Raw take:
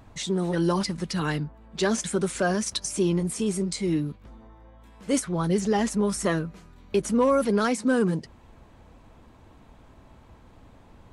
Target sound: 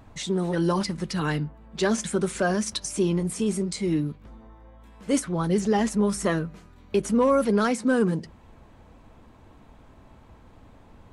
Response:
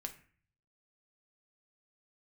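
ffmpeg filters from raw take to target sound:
-filter_complex "[0:a]asplit=2[s0][s1];[1:a]atrim=start_sample=2205,asetrate=57330,aresample=44100,lowpass=3600[s2];[s1][s2]afir=irnorm=-1:irlink=0,volume=0.422[s3];[s0][s3]amix=inputs=2:normalize=0,volume=0.891"

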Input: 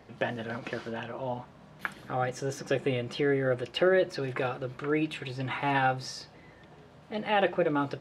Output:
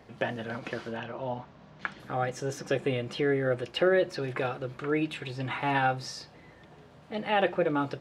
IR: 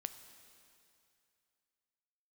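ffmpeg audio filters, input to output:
-filter_complex "[0:a]asettb=1/sr,asplit=3[s0][s1][s2];[s0]atrim=end=0.974[s3];[s1]atrim=start=0.97:end=2,asetpts=PTS-STARTPTS,afade=t=in:d=0.004:c=qsin,afade=t=out:st=1.026:d=0.004:c=qsin,lowpass=f=6400:w=0.5412,lowpass=f=6400:w=1.3066[s4];[s2]atrim=start=1.996[s5];[s3][s4]acrossfade=d=0.004:c1=hsin:c2=qsin[s6];[s6][s5]acrossfade=d=0.004:c1=qsin:c2=hsin"

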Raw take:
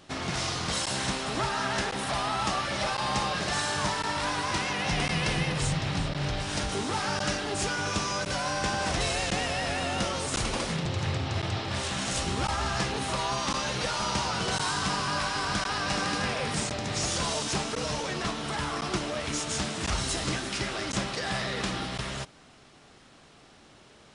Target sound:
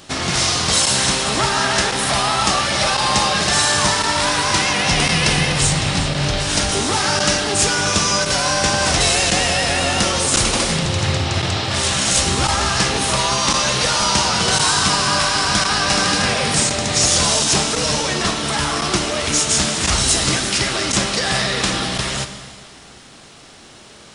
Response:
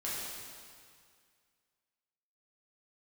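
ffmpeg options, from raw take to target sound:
-filter_complex "[0:a]highshelf=f=4000:g=9,asplit=2[s0][s1];[1:a]atrim=start_sample=2205[s2];[s1][s2]afir=irnorm=-1:irlink=0,volume=0.316[s3];[s0][s3]amix=inputs=2:normalize=0,volume=2.51"

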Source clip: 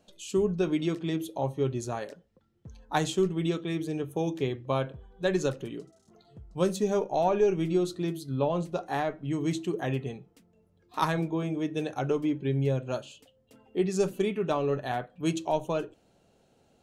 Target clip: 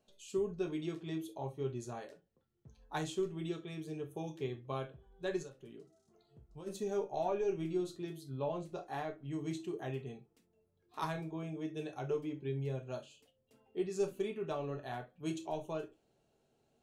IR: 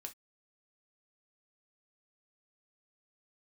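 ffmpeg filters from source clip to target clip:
-filter_complex "[0:a]asplit=3[s0][s1][s2];[s0]afade=t=out:st=5.42:d=0.02[s3];[s1]acompressor=threshold=0.0141:ratio=10,afade=t=in:st=5.42:d=0.02,afade=t=out:st=6.66:d=0.02[s4];[s2]afade=t=in:st=6.66:d=0.02[s5];[s3][s4][s5]amix=inputs=3:normalize=0[s6];[1:a]atrim=start_sample=2205[s7];[s6][s7]afir=irnorm=-1:irlink=0,volume=0.501"

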